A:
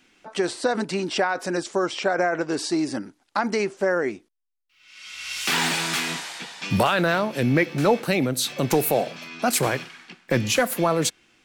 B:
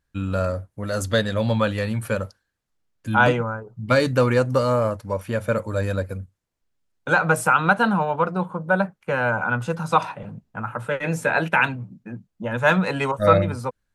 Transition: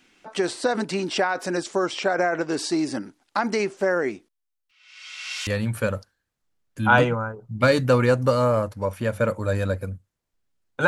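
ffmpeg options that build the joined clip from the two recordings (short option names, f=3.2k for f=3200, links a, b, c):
-filter_complex "[0:a]asettb=1/sr,asplit=3[a][b][c];[a]atrim=end=4.714[d];[b]atrim=start=4.71:end=5.47,asetpts=PTS-STARTPTS,afade=t=in:d=0.004:c=qsin,afade=t=out:st=0.756:d=0.004:c=qsin,highpass=600,lowpass=7.4k[e];[c]atrim=start=5.466[f];[d][e]acrossfade=d=0.004:c1=hsin:c2=qsin[g];[g][f]acrossfade=d=0.004:c1=qsin:c2=hsin,apad=whole_dur=10.87,atrim=end=10.87,atrim=end=5.472[h];[1:a]atrim=start=1.748:end=7.15[i];[h][i]acrossfade=d=0.004:c1=hsin:c2=hsin"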